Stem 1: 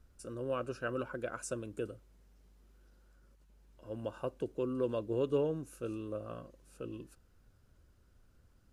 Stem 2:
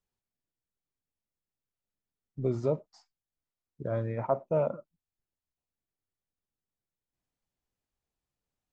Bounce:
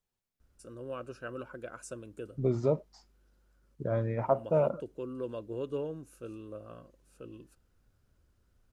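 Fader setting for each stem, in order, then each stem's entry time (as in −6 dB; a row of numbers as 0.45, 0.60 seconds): −4.0, +1.0 decibels; 0.40, 0.00 seconds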